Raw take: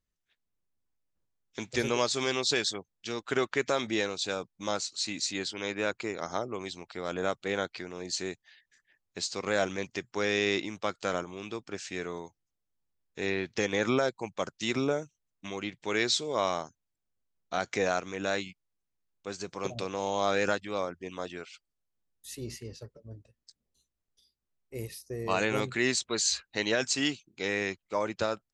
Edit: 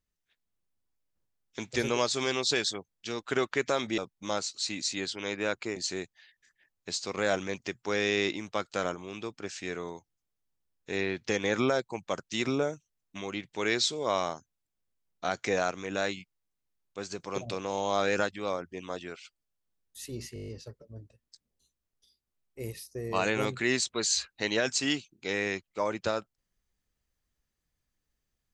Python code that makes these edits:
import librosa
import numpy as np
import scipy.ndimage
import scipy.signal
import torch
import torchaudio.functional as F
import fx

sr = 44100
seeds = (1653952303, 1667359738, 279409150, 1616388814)

y = fx.edit(x, sr, fx.cut(start_s=3.98, length_s=0.38),
    fx.cut(start_s=6.14, length_s=1.91),
    fx.stutter(start_s=22.63, slice_s=0.02, count=8), tone=tone)